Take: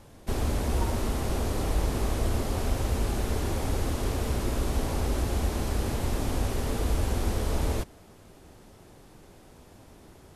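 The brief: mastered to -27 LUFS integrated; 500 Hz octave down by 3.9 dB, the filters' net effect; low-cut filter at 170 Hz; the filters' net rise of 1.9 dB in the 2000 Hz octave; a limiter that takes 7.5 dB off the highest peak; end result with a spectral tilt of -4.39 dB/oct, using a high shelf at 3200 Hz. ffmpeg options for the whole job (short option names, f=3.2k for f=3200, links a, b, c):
-af "highpass=170,equalizer=f=500:t=o:g=-5,equalizer=f=2k:t=o:g=4,highshelf=f=3.2k:g=-4,volume=11dB,alimiter=limit=-18dB:level=0:latency=1"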